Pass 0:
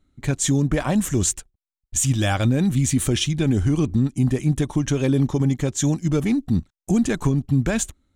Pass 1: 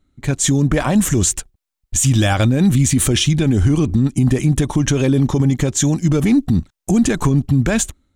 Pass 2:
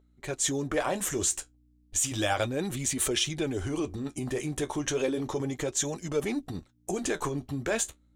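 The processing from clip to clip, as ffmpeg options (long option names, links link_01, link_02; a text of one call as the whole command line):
ffmpeg -i in.wav -af "dynaudnorm=framelen=170:gausssize=5:maxgain=11.5dB,alimiter=level_in=7.5dB:limit=-1dB:release=50:level=0:latency=1,volume=-6dB" out.wav
ffmpeg -i in.wav -af "aeval=exprs='val(0)+0.00794*(sin(2*PI*60*n/s)+sin(2*PI*2*60*n/s)/2+sin(2*PI*3*60*n/s)/3+sin(2*PI*4*60*n/s)/4+sin(2*PI*5*60*n/s)/5)':channel_layout=same,flanger=delay=4.6:depth=9.3:regen=-50:speed=0.33:shape=sinusoidal,lowshelf=frequency=290:width_type=q:width=1.5:gain=-11,volume=-5.5dB" out.wav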